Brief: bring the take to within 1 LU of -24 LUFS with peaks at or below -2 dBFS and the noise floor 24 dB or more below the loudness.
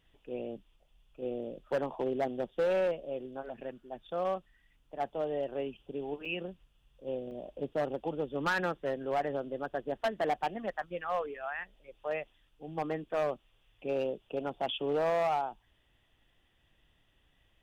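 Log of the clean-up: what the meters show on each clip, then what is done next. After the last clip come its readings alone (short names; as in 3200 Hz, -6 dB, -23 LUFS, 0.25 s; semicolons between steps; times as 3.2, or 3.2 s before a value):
clipped 1.4%; flat tops at -25.0 dBFS; dropouts 2; longest dropout 4.8 ms; loudness -35.0 LUFS; peak -25.0 dBFS; loudness target -24.0 LUFS
-> clip repair -25 dBFS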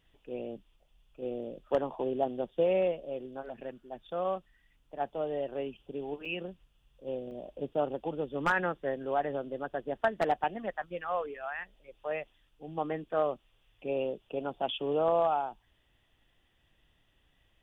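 clipped 0.0%; dropouts 2; longest dropout 4.8 ms
-> interpolate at 6.25/7.31, 4.8 ms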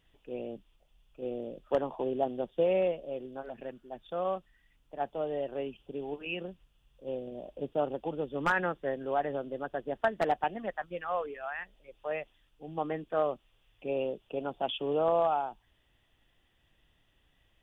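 dropouts 0; loudness -34.0 LUFS; peak -16.0 dBFS; loudness target -24.0 LUFS
-> gain +10 dB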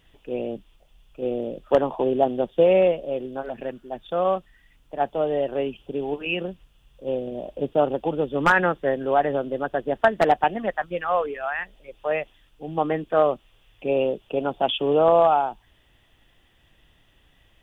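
loudness -24.0 LUFS; peak -6.0 dBFS; noise floor -61 dBFS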